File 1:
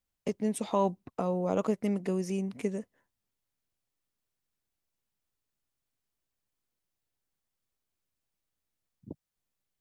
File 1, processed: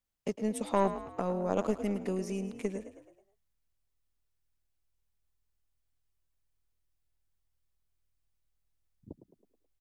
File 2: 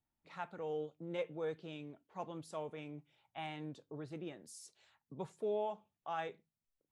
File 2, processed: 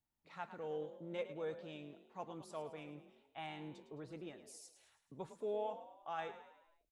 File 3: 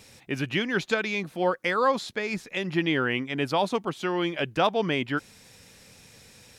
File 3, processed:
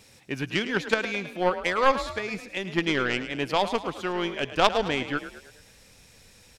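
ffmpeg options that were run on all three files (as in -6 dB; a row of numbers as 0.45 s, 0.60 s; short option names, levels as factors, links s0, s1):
-filter_complex "[0:a]aeval=exprs='0.335*(cos(1*acos(clip(val(0)/0.335,-1,1)))-cos(1*PI/2))+0.0188*(cos(2*acos(clip(val(0)/0.335,-1,1)))-cos(2*PI/2))+0.075*(cos(3*acos(clip(val(0)/0.335,-1,1)))-cos(3*PI/2))+0.00473*(cos(4*acos(clip(val(0)/0.335,-1,1)))-cos(4*PI/2))':c=same,asubboost=boost=4.5:cutoff=60,asplit=6[s0][s1][s2][s3][s4][s5];[s1]adelay=107,afreqshift=40,volume=0.251[s6];[s2]adelay=214,afreqshift=80,volume=0.123[s7];[s3]adelay=321,afreqshift=120,volume=0.0603[s8];[s4]adelay=428,afreqshift=160,volume=0.0295[s9];[s5]adelay=535,afreqshift=200,volume=0.0145[s10];[s0][s6][s7][s8][s9][s10]amix=inputs=6:normalize=0,volume=2.24"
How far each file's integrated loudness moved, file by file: -1.5 LU, -2.5 LU, +0.5 LU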